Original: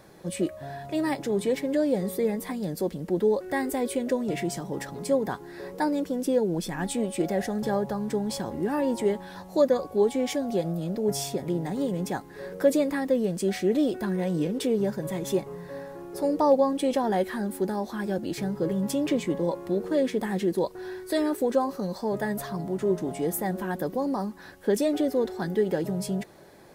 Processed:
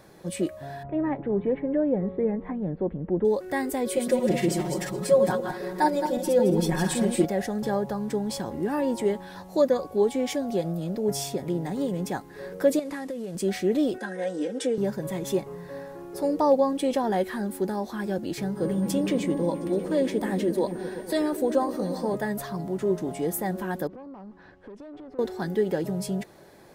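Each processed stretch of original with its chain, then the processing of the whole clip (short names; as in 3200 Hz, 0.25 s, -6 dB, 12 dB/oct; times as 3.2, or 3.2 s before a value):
0.83–3.25 Gaussian blur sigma 4.6 samples + low shelf 83 Hz +11 dB
3.86–7.25 regenerating reverse delay 0.11 s, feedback 44%, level -4 dB + comb 5.5 ms, depth 91%
12.79–13.35 CVSD 64 kbps + low shelf 180 Hz -6 dB + compressor 12:1, threshold -29 dBFS
13.98–14.78 speaker cabinet 380–9700 Hz, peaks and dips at 1100 Hz -10 dB, 1600 Hz +6 dB, 2600 Hz -5 dB, 4300 Hz -6 dB + comb 3.8 ms, depth 77%
18.55–22.15 whine 9000 Hz -55 dBFS + repeats that get brighter 0.119 s, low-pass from 200 Hz, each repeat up 1 oct, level -6 dB
23.87–25.19 compressor 10:1, threshold -34 dBFS + tube stage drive 37 dB, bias 0.45 + tape spacing loss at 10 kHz 28 dB
whole clip: dry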